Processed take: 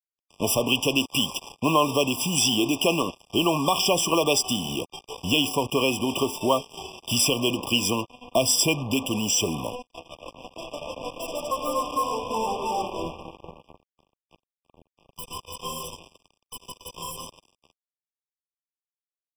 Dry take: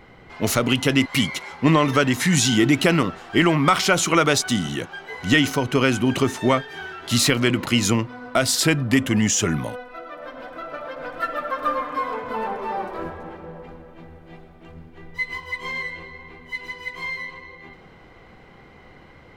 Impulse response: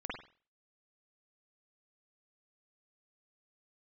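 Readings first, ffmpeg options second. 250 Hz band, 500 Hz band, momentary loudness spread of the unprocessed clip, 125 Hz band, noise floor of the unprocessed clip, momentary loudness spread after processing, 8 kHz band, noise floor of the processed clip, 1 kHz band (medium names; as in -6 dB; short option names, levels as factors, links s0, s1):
-6.5 dB, -2.0 dB, 17 LU, -9.5 dB, -48 dBFS, 18 LU, -1.0 dB, under -85 dBFS, -2.5 dB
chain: -filter_complex "[0:a]adynamicequalizer=threshold=0.0158:dfrequency=130:dqfactor=1.2:tfrequency=130:tqfactor=1.2:attack=5:release=100:ratio=0.375:range=3.5:mode=cutabove:tftype=bell,acrusher=bits=4:mix=0:aa=0.5,acrossover=split=410[s0][s1];[s0]acompressor=threshold=0.0398:ratio=4[s2];[s2][s1]amix=inputs=2:normalize=0,highshelf=f=6400:g=5.5,afftfilt=real='re*eq(mod(floor(b*sr/1024/1200),2),0)':imag='im*eq(mod(floor(b*sr/1024/1200),2),0)':win_size=1024:overlap=0.75"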